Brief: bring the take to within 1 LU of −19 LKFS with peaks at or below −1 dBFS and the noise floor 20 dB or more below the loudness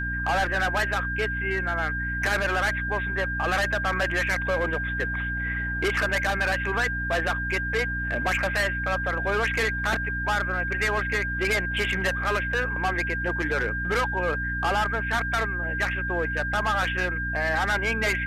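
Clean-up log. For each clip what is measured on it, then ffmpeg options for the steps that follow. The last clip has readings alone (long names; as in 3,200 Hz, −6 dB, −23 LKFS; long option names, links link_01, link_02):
mains hum 60 Hz; hum harmonics up to 300 Hz; level of the hum −30 dBFS; interfering tone 1,600 Hz; level of the tone −28 dBFS; integrated loudness −25.5 LKFS; sample peak −15.0 dBFS; target loudness −19.0 LKFS
→ -af "bandreject=frequency=60:width_type=h:width=4,bandreject=frequency=120:width_type=h:width=4,bandreject=frequency=180:width_type=h:width=4,bandreject=frequency=240:width_type=h:width=4,bandreject=frequency=300:width_type=h:width=4"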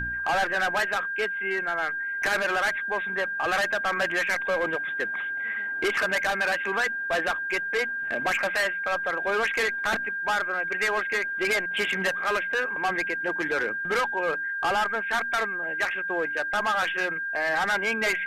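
mains hum none found; interfering tone 1,600 Hz; level of the tone −28 dBFS
→ -af "bandreject=frequency=1600:width=30"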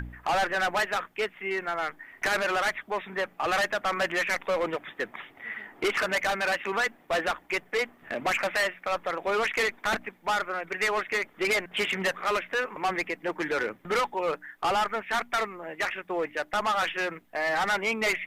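interfering tone none found; integrated loudness −28.5 LKFS; sample peak −18.0 dBFS; target loudness −19.0 LKFS
→ -af "volume=9.5dB"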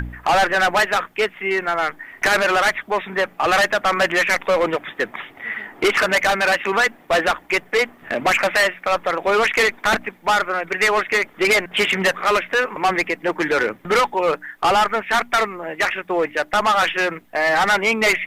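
integrated loudness −19.0 LKFS; sample peak −8.5 dBFS; background noise floor −49 dBFS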